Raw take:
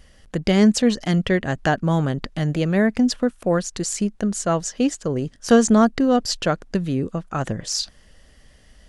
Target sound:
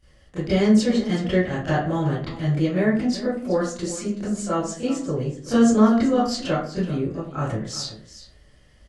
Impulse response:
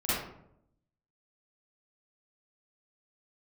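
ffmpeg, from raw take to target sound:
-filter_complex "[0:a]aecho=1:1:378:0.188[link_01];[1:a]atrim=start_sample=2205,asetrate=74970,aresample=44100[link_02];[link_01][link_02]afir=irnorm=-1:irlink=0,volume=-8.5dB"

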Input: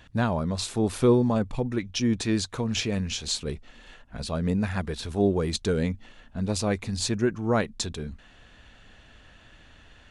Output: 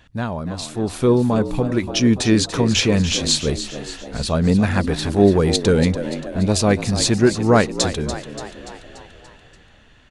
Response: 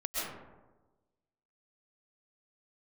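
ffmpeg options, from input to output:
-filter_complex "[0:a]dynaudnorm=framelen=120:gausssize=21:maxgain=11.5dB,asplit=7[link_01][link_02][link_03][link_04][link_05][link_06][link_07];[link_02]adelay=289,afreqshift=63,volume=-11.5dB[link_08];[link_03]adelay=578,afreqshift=126,volume=-16.7dB[link_09];[link_04]adelay=867,afreqshift=189,volume=-21.9dB[link_10];[link_05]adelay=1156,afreqshift=252,volume=-27.1dB[link_11];[link_06]adelay=1445,afreqshift=315,volume=-32.3dB[link_12];[link_07]adelay=1734,afreqshift=378,volume=-37.5dB[link_13];[link_01][link_08][link_09][link_10][link_11][link_12][link_13]amix=inputs=7:normalize=0"

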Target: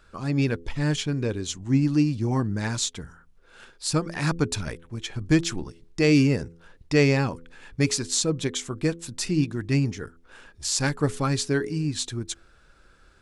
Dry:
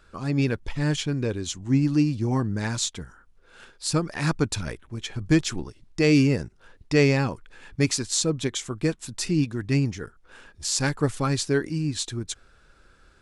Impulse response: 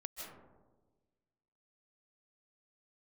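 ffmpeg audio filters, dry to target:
-af "bandreject=frequency=84.15:width_type=h:width=4,bandreject=frequency=168.3:width_type=h:width=4,bandreject=frequency=252.45:width_type=h:width=4,bandreject=frequency=336.6:width_type=h:width=4,bandreject=frequency=420.75:width_type=h:width=4,bandreject=frequency=504.9:width_type=h:width=4"

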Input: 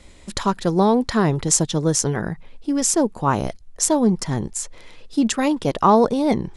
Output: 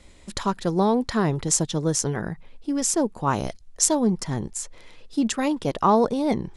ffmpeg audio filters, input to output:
ffmpeg -i in.wav -filter_complex "[0:a]asettb=1/sr,asplit=3[link_01][link_02][link_03];[link_01]atrim=end=3.274[link_04];[link_02]atrim=start=3.27:end=3.95,asetpts=PTS-STARTPTS,afade=type=in:duration=0.004:curve=qsin,afade=type=out:start_time=0.676:duration=0.004:curve=qsin,equalizer=frequency=5600:width_type=o:width=2.1:gain=5[link_05];[link_03]atrim=start=3.946[link_06];[link_04][link_05]acrossfade=duration=0.004:curve1=hsin:curve2=qsin[link_07];[link_07][link_06]acrossfade=duration=0.004:curve1=qsin:curve2=hsin,volume=-4dB" out.wav

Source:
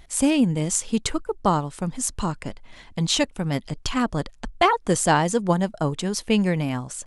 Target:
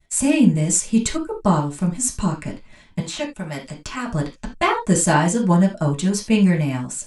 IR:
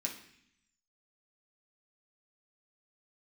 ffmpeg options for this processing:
-filter_complex "[0:a]agate=range=-33dB:threshold=-39dB:ratio=3:detection=peak,asettb=1/sr,asplit=3[link_01][link_02][link_03];[link_01]atrim=end=3.004[link_04];[link_02]atrim=start=3:end=4.1,asetpts=PTS-STARTPTS,afade=type=in:duration=0.004:curve=qsin,afade=type=out:start_time=1.096:duration=0.004:curve=qsin,acrossover=split=420|2400[link_05][link_06][link_07];[link_05]acompressor=threshold=-37dB:ratio=4[link_08];[link_06]acompressor=threshold=-27dB:ratio=4[link_09];[link_07]acompressor=threshold=-36dB:ratio=4[link_10];[link_08][link_09][link_10]amix=inputs=3:normalize=0[link_11];[link_03]atrim=start=4.096[link_12];[link_04][link_11]acrossfade=duration=0.004:curve1=hsin:curve2=qsin[link_13];[link_13][link_12]acrossfade=duration=0.004:curve1=qsin:curve2=hsin[link_14];[1:a]atrim=start_sample=2205,afade=type=out:start_time=0.14:duration=0.01,atrim=end_sample=6615[link_15];[link_14][link_15]afir=irnorm=-1:irlink=0,volume=1.5dB"

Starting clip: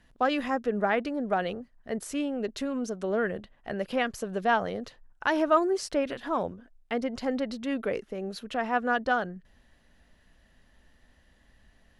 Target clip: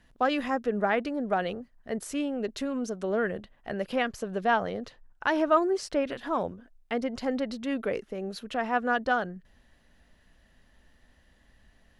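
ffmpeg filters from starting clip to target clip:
ffmpeg -i in.wav -filter_complex "[0:a]asettb=1/sr,asplit=3[link_01][link_02][link_03];[link_01]atrim=end=4.024[link_04];[link_02]atrim=start=4.02:end=6.12,asetpts=PTS-STARTPTS,afade=type=in:duration=0.004:curve=qsin,afade=type=out:start_time=2.096:duration=0.004:curve=qsin,highshelf=frequency=8100:gain=-7[link_05];[link_03]atrim=start=6.116[link_06];[link_04][link_05]acrossfade=duration=0.004:curve1=hsin:curve2=qsin[link_07];[link_07][link_06]acrossfade=duration=0.004:curve1=qsin:curve2=hsin" out.wav

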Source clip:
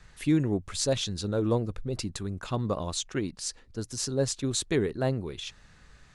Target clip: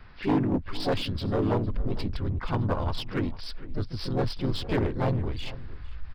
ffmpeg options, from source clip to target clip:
ffmpeg -i in.wav -filter_complex "[0:a]asubboost=boost=10:cutoff=69,asplit=4[link_01][link_02][link_03][link_04];[link_02]asetrate=37084,aresample=44100,atempo=1.18921,volume=-2dB[link_05];[link_03]asetrate=52444,aresample=44100,atempo=0.840896,volume=-17dB[link_06];[link_04]asetrate=58866,aresample=44100,atempo=0.749154,volume=-7dB[link_07];[link_01][link_05][link_06][link_07]amix=inputs=4:normalize=0,aresample=16000,aeval=exprs='0.141*(abs(mod(val(0)/0.141+3,4)-2)-1)':channel_layout=same,aresample=44100,aresample=11025,aresample=44100,asplit=2[link_08][link_09];[link_09]asoftclip=type=hard:threshold=-31dB,volume=-3dB[link_10];[link_08][link_10]amix=inputs=2:normalize=0,equalizer=frequency=250:width_type=o:width=0.67:gain=5,equalizer=frequency=1000:width_type=o:width=0.67:gain=4,equalizer=frequency=4000:width_type=o:width=0.67:gain=-5,asplit=2[link_11][link_12];[link_12]adelay=454.8,volume=-17dB,highshelf=frequency=4000:gain=-10.2[link_13];[link_11][link_13]amix=inputs=2:normalize=0,volume=-4dB" out.wav

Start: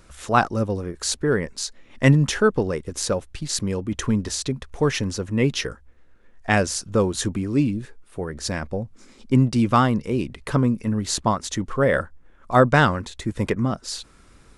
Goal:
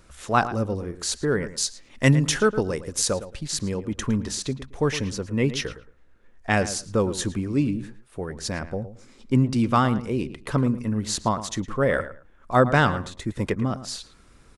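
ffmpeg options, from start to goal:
ffmpeg -i in.wav -filter_complex "[0:a]asettb=1/sr,asplit=3[link_01][link_02][link_03];[link_01]atrim=end=1.474[link_04];[link_02]atrim=start=1.47:end=3.1,asetpts=PTS-STARTPTS,afade=type=in:duration=0.004:curve=qsin,afade=type=out:start_time=1.626:duration=0.004:curve=qsin,highshelf=frequency=4000:gain=8.5[link_05];[link_03]atrim=start=3.096[link_06];[link_04][link_05]acrossfade=duration=0.004:curve1=hsin:curve2=qsin[link_07];[link_07][link_06]acrossfade=duration=0.004:curve1=qsin:curve2=hsin,asplit=2[link_08][link_09];[link_09]adelay=111,lowpass=frequency=2700:poles=1,volume=-13dB,asplit=2[link_10][link_11];[link_11]adelay=111,lowpass=frequency=2700:poles=1,volume=0.21[link_12];[link_10][link_12]amix=inputs=2:normalize=0[link_13];[link_08][link_13]amix=inputs=2:normalize=0,volume=-2.5dB" out.wav

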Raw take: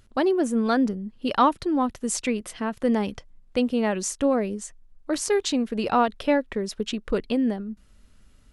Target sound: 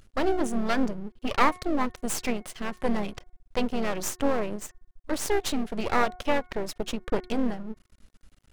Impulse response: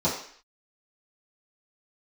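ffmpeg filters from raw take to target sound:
-filter_complex "[0:a]asplit=2[link_01][link_02];[link_02]asetrate=37084,aresample=44100,atempo=1.18921,volume=-14dB[link_03];[link_01][link_03]amix=inputs=2:normalize=0,aeval=exprs='max(val(0),0)':channel_layout=same,bandreject=frequency=363:width_type=h:width=4,bandreject=frequency=726:width_type=h:width=4,bandreject=frequency=1089:width_type=h:width=4,bandreject=frequency=1452:width_type=h:width=4,bandreject=frequency=1815:width_type=h:width=4,bandreject=frequency=2178:width_type=h:width=4,volume=1.5dB"

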